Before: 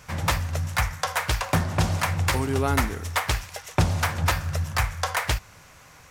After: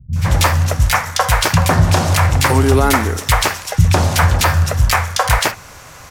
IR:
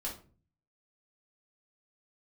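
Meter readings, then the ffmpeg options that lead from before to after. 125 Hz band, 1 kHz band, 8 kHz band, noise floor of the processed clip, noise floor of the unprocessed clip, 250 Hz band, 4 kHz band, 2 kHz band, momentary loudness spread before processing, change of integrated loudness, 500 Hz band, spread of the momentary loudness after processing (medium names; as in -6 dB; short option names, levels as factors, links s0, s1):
+12.0 dB, +11.0 dB, +12.0 dB, -38 dBFS, -50 dBFS, +10.5 dB, +11.0 dB, +10.0 dB, 4 LU, +11.0 dB, +11.5 dB, 3 LU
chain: -filter_complex "[0:a]acrossover=split=190|2400[s0][s1][s2];[s2]adelay=130[s3];[s1]adelay=160[s4];[s0][s4][s3]amix=inputs=3:normalize=0,alimiter=level_in=5.31:limit=0.891:release=50:level=0:latency=1,volume=0.891"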